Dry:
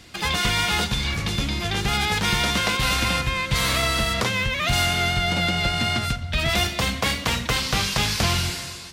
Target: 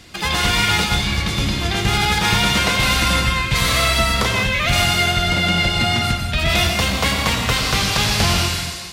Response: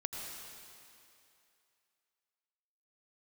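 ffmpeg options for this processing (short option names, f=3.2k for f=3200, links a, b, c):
-filter_complex "[1:a]atrim=start_sample=2205,afade=t=out:st=0.26:d=0.01,atrim=end_sample=11907,asetrate=42777,aresample=44100[a];[0:a][a]afir=irnorm=-1:irlink=0,volume=5dB"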